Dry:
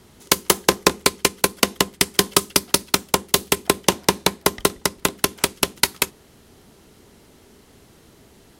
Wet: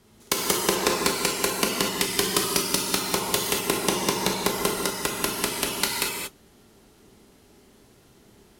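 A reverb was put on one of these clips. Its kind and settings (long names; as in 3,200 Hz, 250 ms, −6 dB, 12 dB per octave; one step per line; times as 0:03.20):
reverb whose tail is shaped and stops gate 260 ms flat, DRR −2 dB
level −8.5 dB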